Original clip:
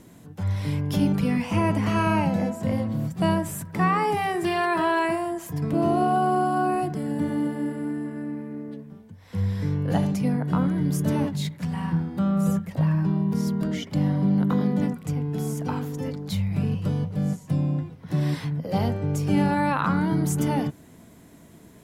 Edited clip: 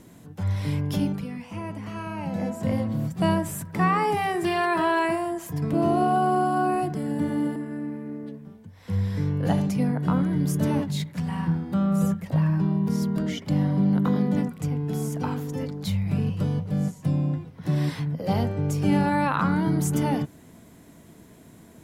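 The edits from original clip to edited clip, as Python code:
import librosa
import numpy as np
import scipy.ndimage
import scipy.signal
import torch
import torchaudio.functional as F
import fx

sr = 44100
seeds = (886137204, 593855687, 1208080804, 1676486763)

y = fx.edit(x, sr, fx.fade_down_up(start_s=0.85, length_s=1.75, db=-11.5, fade_s=0.43),
    fx.cut(start_s=7.56, length_s=0.45), tone=tone)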